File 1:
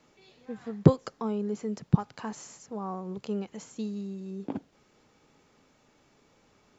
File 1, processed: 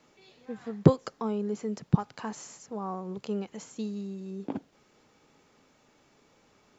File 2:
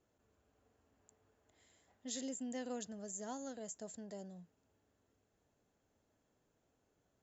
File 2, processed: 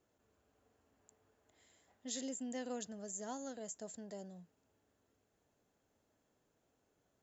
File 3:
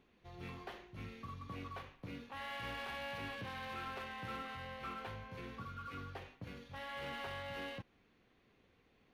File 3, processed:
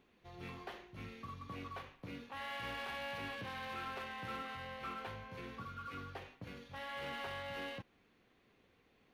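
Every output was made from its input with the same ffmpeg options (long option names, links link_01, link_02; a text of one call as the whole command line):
ffmpeg -i in.wav -af "lowshelf=frequency=140:gain=-4.5,volume=1dB" out.wav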